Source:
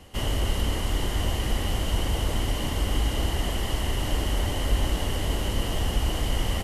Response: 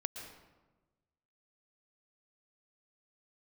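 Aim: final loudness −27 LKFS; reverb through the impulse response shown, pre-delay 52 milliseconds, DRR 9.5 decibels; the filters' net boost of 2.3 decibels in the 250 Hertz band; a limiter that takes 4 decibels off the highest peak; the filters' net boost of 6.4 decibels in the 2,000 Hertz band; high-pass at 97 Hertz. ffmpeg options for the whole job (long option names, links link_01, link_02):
-filter_complex "[0:a]highpass=97,equalizer=frequency=250:width_type=o:gain=3,equalizer=frequency=2000:width_type=o:gain=7.5,alimiter=limit=-20dB:level=0:latency=1,asplit=2[link_01][link_02];[1:a]atrim=start_sample=2205,adelay=52[link_03];[link_02][link_03]afir=irnorm=-1:irlink=0,volume=-9.5dB[link_04];[link_01][link_04]amix=inputs=2:normalize=0,volume=2dB"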